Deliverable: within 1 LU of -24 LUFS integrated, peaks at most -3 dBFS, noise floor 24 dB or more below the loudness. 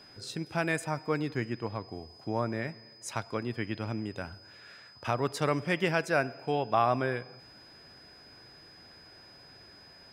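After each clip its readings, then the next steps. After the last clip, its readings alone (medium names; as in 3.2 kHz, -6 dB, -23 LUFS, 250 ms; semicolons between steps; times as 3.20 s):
steady tone 5 kHz; tone level -53 dBFS; loudness -32.0 LUFS; peak level -12.5 dBFS; loudness target -24.0 LUFS
-> band-stop 5 kHz, Q 30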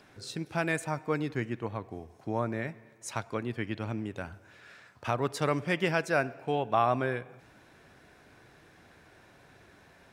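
steady tone not found; loudness -32.0 LUFS; peak level -12.5 dBFS; loudness target -24.0 LUFS
-> trim +8 dB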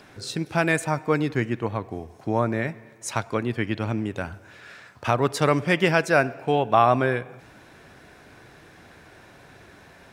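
loudness -24.0 LUFS; peak level -4.5 dBFS; noise floor -51 dBFS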